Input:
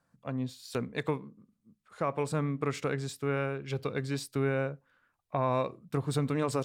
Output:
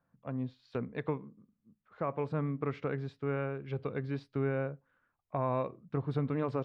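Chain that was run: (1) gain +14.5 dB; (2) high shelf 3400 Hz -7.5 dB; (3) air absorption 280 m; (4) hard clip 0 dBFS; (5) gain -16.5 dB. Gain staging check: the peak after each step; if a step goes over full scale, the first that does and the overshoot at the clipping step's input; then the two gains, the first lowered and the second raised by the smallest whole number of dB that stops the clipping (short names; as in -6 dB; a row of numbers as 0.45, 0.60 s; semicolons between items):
-2.5, -3.5, -4.5, -4.5, -21.0 dBFS; no overload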